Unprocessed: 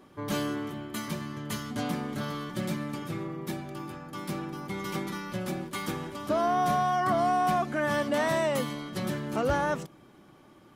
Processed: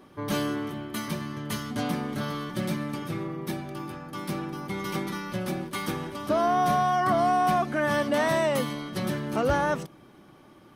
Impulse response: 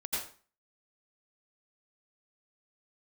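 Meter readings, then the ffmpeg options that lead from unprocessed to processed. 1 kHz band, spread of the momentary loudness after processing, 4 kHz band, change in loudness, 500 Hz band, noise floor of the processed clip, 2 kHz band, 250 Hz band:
+2.5 dB, 11 LU, +2.5 dB, +2.5 dB, +2.5 dB, −53 dBFS, +2.5 dB, +2.5 dB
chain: -af "bandreject=frequency=7200:width=7.7,volume=2.5dB"

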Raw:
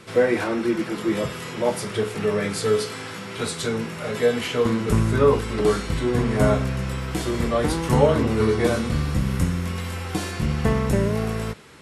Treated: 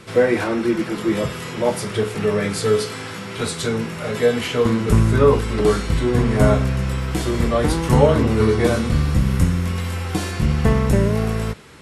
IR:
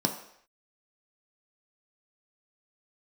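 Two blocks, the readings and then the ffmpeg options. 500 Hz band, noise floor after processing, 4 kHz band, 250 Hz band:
+3.0 dB, −31 dBFS, +2.5 dB, +3.5 dB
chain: -af "lowshelf=frequency=100:gain=6,volume=2.5dB"

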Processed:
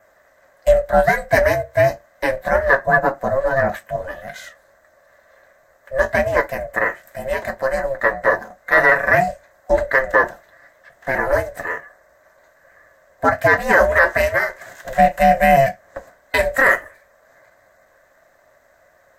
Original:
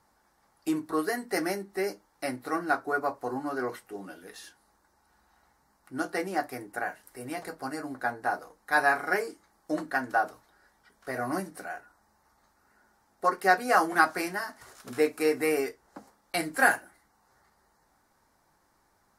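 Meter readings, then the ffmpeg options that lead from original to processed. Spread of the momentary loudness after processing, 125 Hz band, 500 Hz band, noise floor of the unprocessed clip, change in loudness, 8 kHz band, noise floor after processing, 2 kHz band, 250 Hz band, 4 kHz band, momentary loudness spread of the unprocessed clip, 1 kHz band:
13 LU, +18.5 dB, +14.0 dB, −69 dBFS, +12.0 dB, +2.5 dB, −56 dBFS, +12.5 dB, +4.5 dB, +6.0 dB, 16 LU, +10.0 dB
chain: -af "highpass=180,adynamicequalizer=threshold=0.00141:dfrequency=4200:dqfactor=6.1:tfrequency=4200:tqfactor=6.1:attack=5:release=100:ratio=0.375:range=1.5:mode=cutabove:tftype=bell,aeval=exprs='val(0)*sin(2*PI*270*n/s)':channel_layout=same,superequalizer=8b=3.16:11b=2.82:14b=0.562:16b=0.282,alimiter=limit=-14dB:level=0:latency=1:release=18,acontrast=45,volume=6dB"

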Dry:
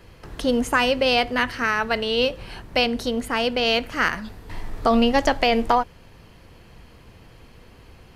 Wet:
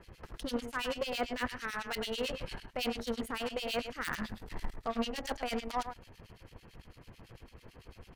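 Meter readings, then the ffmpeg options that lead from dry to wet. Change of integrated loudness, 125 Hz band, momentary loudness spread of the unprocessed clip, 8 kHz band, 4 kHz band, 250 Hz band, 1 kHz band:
−15.5 dB, −11.0 dB, 15 LU, −9.0 dB, −15.0 dB, −14.5 dB, −16.0 dB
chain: -filter_complex "[0:a]areverse,acompressor=threshold=-29dB:ratio=6,areverse,aecho=1:1:104:0.398,aeval=exprs='0.112*(cos(1*acos(clip(val(0)/0.112,-1,1)))-cos(1*PI/2))+0.02*(cos(6*acos(clip(val(0)/0.112,-1,1)))-cos(6*PI/2))+0.00447*(cos(7*acos(clip(val(0)/0.112,-1,1)))-cos(7*PI/2))+0.02*(cos(8*acos(clip(val(0)/0.112,-1,1)))-cos(8*PI/2))':channel_layout=same,acrossover=split=2000[link_01][link_02];[link_01]aeval=exprs='val(0)*(1-1/2+1/2*cos(2*PI*9*n/s))':channel_layout=same[link_03];[link_02]aeval=exprs='val(0)*(1-1/2-1/2*cos(2*PI*9*n/s))':channel_layout=same[link_04];[link_03][link_04]amix=inputs=2:normalize=0"

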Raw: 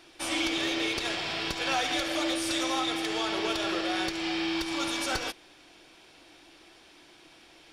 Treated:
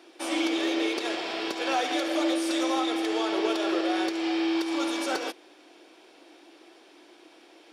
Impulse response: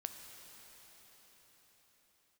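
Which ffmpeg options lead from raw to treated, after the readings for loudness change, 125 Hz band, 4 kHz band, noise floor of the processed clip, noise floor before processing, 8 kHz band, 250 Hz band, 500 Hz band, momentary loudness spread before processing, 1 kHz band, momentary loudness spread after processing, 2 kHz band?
+1.5 dB, below −10 dB, −2.5 dB, −55 dBFS, −56 dBFS, −3.0 dB, +5.0 dB, +5.0 dB, 3 LU, +2.0 dB, 4 LU, −1.5 dB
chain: -af "highpass=frequency=300:width=0.5412,highpass=frequency=300:width=1.3066,tiltshelf=frequency=760:gain=6,volume=3dB"

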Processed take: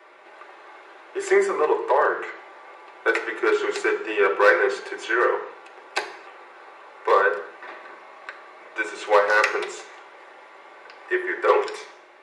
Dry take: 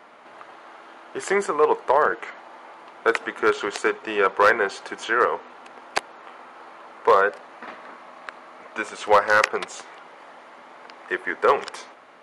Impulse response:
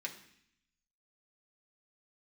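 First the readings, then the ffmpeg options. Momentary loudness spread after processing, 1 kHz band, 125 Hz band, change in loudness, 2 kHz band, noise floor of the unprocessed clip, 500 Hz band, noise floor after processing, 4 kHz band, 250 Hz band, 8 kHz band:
21 LU, −2.0 dB, can't be measured, 0.0 dB, +1.0 dB, −47 dBFS, +1.0 dB, −48 dBFS, −1.0 dB, +2.5 dB, −2.0 dB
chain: -filter_complex "[0:a]lowshelf=frequency=300:width_type=q:width=3:gain=-7[link_01];[1:a]atrim=start_sample=2205,afade=type=out:start_time=0.35:duration=0.01,atrim=end_sample=15876[link_02];[link_01][link_02]afir=irnorm=-1:irlink=0"

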